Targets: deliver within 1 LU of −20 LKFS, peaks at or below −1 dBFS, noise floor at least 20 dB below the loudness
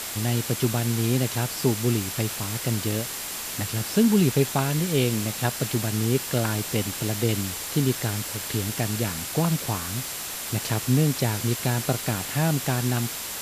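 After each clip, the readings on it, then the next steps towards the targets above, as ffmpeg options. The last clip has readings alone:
interfering tone 7,400 Hz; level of the tone −43 dBFS; background noise floor −33 dBFS; target noise floor −45 dBFS; integrated loudness −25.0 LKFS; sample peak −8.0 dBFS; target loudness −20.0 LKFS
→ -af "bandreject=frequency=7400:width=30"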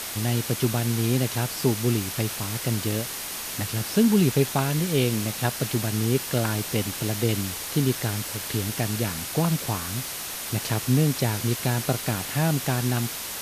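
interfering tone none found; background noise floor −34 dBFS; target noise floor −45 dBFS
→ -af "afftdn=noise_reduction=11:noise_floor=-34"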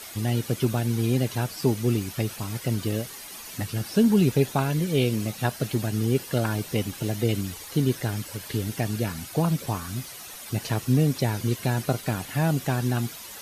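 background noise floor −41 dBFS; target noise floor −47 dBFS
→ -af "afftdn=noise_reduction=6:noise_floor=-41"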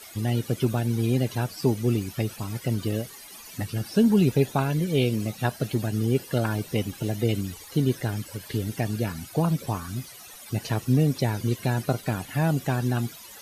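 background noise floor −45 dBFS; target noise floor −47 dBFS
→ -af "afftdn=noise_reduction=6:noise_floor=-45"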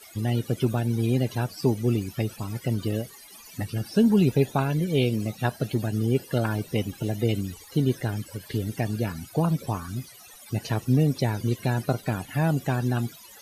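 background noise floor −48 dBFS; integrated loudness −26.5 LKFS; sample peak −8.5 dBFS; target loudness −20.0 LKFS
→ -af "volume=6.5dB"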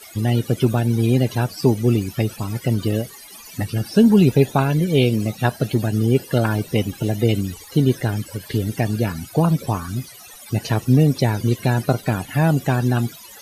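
integrated loudness −20.0 LKFS; sample peak −2.0 dBFS; background noise floor −42 dBFS

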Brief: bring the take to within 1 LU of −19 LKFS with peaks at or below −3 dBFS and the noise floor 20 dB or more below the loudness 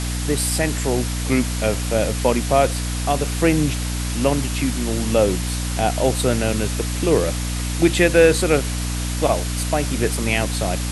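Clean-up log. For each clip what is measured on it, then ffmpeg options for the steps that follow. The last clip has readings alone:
mains hum 60 Hz; hum harmonics up to 300 Hz; level of the hum −22 dBFS; background noise floor −24 dBFS; target noise floor −40 dBFS; integrated loudness −20.0 LKFS; sample peak −2.0 dBFS; target loudness −19.0 LKFS
→ -af "bandreject=frequency=60:width_type=h:width=4,bandreject=frequency=120:width_type=h:width=4,bandreject=frequency=180:width_type=h:width=4,bandreject=frequency=240:width_type=h:width=4,bandreject=frequency=300:width_type=h:width=4"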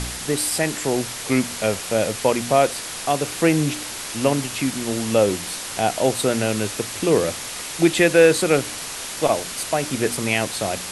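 mains hum none found; background noise floor −32 dBFS; target noise floor −41 dBFS
→ -af "afftdn=noise_reduction=9:noise_floor=-32"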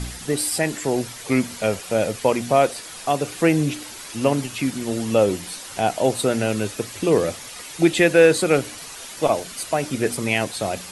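background noise floor −38 dBFS; target noise floor −42 dBFS
→ -af "afftdn=noise_reduction=6:noise_floor=-38"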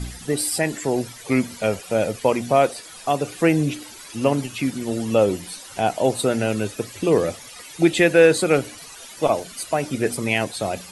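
background noise floor −41 dBFS; target noise floor −42 dBFS
→ -af "afftdn=noise_reduction=6:noise_floor=-41"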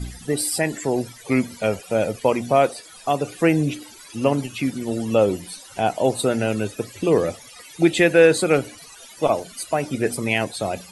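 background noise floor −44 dBFS; integrated loudness −21.5 LKFS; sample peak −3.5 dBFS; target loudness −19.0 LKFS
→ -af "volume=2.5dB,alimiter=limit=-3dB:level=0:latency=1"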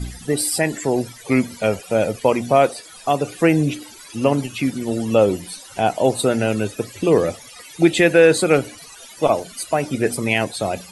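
integrated loudness −19.5 LKFS; sample peak −3.0 dBFS; background noise floor −42 dBFS

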